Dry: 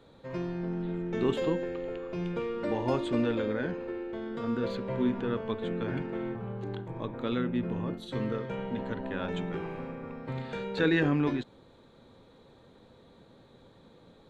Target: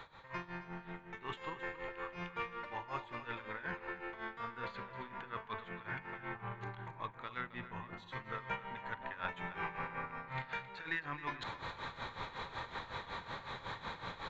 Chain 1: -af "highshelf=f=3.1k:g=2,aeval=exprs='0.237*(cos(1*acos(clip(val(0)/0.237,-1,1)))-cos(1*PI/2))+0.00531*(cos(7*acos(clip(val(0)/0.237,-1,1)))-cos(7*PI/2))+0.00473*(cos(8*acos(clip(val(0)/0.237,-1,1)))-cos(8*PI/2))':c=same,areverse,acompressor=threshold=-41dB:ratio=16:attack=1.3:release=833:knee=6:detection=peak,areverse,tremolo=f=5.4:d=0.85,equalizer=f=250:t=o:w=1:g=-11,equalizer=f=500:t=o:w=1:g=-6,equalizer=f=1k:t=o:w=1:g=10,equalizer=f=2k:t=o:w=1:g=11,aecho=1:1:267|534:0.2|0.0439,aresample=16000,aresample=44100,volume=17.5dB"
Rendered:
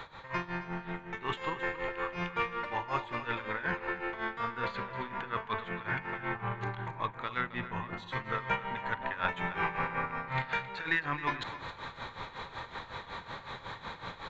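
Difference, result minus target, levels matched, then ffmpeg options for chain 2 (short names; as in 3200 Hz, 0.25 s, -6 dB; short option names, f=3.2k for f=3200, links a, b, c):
compressor: peak gain reduction -8.5 dB
-af "highshelf=f=3.1k:g=2,aeval=exprs='0.237*(cos(1*acos(clip(val(0)/0.237,-1,1)))-cos(1*PI/2))+0.00531*(cos(7*acos(clip(val(0)/0.237,-1,1)))-cos(7*PI/2))+0.00473*(cos(8*acos(clip(val(0)/0.237,-1,1)))-cos(8*PI/2))':c=same,areverse,acompressor=threshold=-50dB:ratio=16:attack=1.3:release=833:knee=6:detection=peak,areverse,tremolo=f=5.4:d=0.85,equalizer=f=250:t=o:w=1:g=-11,equalizer=f=500:t=o:w=1:g=-6,equalizer=f=1k:t=o:w=1:g=10,equalizer=f=2k:t=o:w=1:g=11,aecho=1:1:267|534:0.2|0.0439,aresample=16000,aresample=44100,volume=17.5dB"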